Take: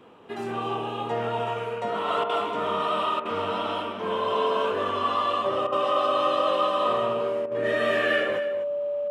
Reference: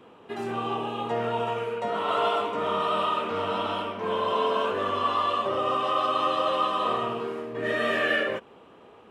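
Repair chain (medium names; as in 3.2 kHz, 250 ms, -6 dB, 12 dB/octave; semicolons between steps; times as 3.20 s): band-stop 580 Hz, Q 30; interpolate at 2.24/3.20/5.67/7.46 s, 52 ms; inverse comb 247 ms -11.5 dB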